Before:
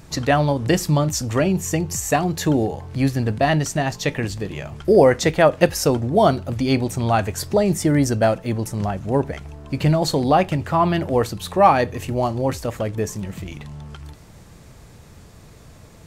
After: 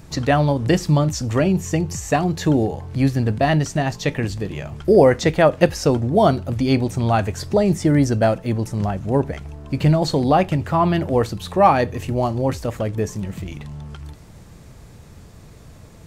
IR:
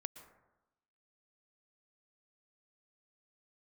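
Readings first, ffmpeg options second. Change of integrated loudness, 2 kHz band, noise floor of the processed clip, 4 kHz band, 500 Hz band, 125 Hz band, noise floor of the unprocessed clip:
+0.5 dB, −1.0 dB, −44 dBFS, −1.5 dB, +0.5 dB, +2.0 dB, −45 dBFS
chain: -filter_complex "[0:a]acrossover=split=6900[link_01][link_02];[link_02]acompressor=threshold=-41dB:ratio=4:attack=1:release=60[link_03];[link_01][link_03]amix=inputs=2:normalize=0,lowshelf=frequency=400:gain=3.5,volume=-1dB"

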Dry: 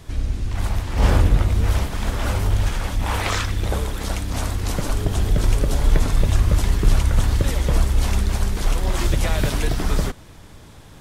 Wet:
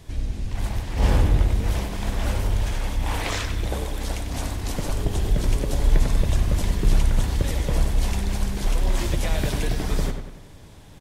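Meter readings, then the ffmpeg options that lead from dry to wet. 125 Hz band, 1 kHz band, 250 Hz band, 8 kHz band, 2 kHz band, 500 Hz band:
−4.0 dB, −4.5 dB, −2.5 dB, −3.5 dB, −4.0 dB, −2.5 dB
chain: -filter_complex "[0:a]equalizer=frequency=1300:width_type=o:width=0.48:gain=-5.5,asplit=2[link_01][link_02];[link_02]adelay=96,lowpass=frequency=3500:poles=1,volume=-7dB,asplit=2[link_03][link_04];[link_04]adelay=96,lowpass=frequency=3500:poles=1,volume=0.5,asplit=2[link_05][link_06];[link_06]adelay=96,lowpass=frequency=3500:poles=1,volume=0.5,asplit=2[link_07][link_08];[link_08]adelay=96,lowpass=frequency=3500:poles=1,volume=0.5,asplit=2[link_09][link_10];[link_10]adelay=96,lowpass=frequency=3500:poles=1,volume=0.5,asplit=2[link_11][link_12];[link_12]adelay=96,lowpass=frequency=3500:poles=1,volume=0.5[link_13];[link_03][link_05][link_07][link_09][link_11][link_13]amix=inputs=6:normalize=0[link_14];[link_01][link_14]amix=inputs=2:normalize=0,volume=-3.5dB"

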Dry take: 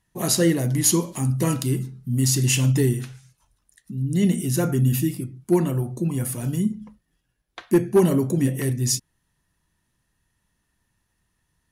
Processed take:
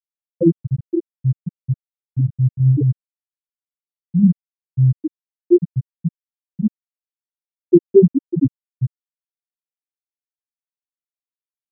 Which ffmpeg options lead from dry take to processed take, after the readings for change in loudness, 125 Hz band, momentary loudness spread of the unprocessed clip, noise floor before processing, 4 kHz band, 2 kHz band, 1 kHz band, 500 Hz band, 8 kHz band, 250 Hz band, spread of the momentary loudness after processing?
+2.5 dB, +3.0 dB, 8 LU, −74 dBFS, below −40 dB, below −40 dB, below −30 dB, +4.5 dB, below −40 dB, +3.0 dB, 13 LU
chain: -af "highshelf=frequency=4500:gain=-5.5,afftfilt=real='re*gte(hypot(re,im),1.12)':imag='im*gte(hypot(re,im),1.12)':win_size=1024:overlap=0.75,volume=8dB"

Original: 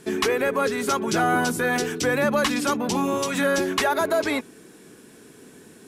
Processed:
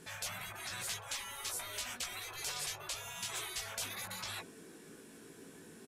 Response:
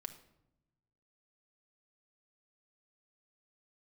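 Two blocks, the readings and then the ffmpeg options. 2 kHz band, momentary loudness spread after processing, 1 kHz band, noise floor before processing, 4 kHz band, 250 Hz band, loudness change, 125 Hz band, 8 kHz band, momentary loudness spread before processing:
−18.5 dB, 16 LU, −22.5 dB, −49 dBFS, −9.5 dB, −31.0 dB, −17.0 dB, −19.0 dB, −8.0 dB, 3 LU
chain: -filter_complex "[0:a]asplit=2[link_01][link_02];[link_02]adelay=18,volume=-4dB[link_03];[link_01][link_03]amix=inputs=2:normalize=0,afftfilt=real='re*lt(hypot(re,im),0.0794)':imag='im*lt(hypot(re,im),0.0794)':win_size=1024:overlap=0.75,bandreject=frequency=109.8:width_type=h:width=4,bandreject=frequency=219.6:width_type=h:width=4,bandreject=frequency=329.4:width_type=h:width=4,bandreject=frequency=439.2:width_type=h:width=4,bandreject=frequency=549:width_type=h:width=4,bandreject=frequency=658.8:width_type=h:width=4,volume=-7.5dB"

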